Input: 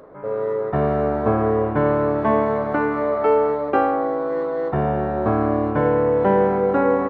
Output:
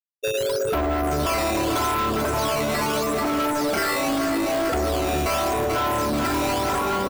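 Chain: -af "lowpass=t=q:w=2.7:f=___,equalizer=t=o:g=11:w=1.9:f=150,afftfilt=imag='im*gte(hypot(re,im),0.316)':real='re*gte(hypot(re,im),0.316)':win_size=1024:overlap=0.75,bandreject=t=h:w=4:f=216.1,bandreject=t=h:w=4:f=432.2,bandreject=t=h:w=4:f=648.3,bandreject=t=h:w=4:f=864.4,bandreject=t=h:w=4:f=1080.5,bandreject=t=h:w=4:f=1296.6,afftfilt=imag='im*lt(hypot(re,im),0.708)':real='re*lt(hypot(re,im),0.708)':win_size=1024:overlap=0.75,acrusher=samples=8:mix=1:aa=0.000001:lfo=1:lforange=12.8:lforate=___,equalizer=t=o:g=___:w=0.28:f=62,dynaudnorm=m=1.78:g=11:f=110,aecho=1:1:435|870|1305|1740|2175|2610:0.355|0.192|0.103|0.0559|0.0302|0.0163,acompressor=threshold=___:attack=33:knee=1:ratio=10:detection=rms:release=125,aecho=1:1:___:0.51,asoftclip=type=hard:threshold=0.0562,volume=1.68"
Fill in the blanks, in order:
1500, 0.82, 10, 0.0708, 3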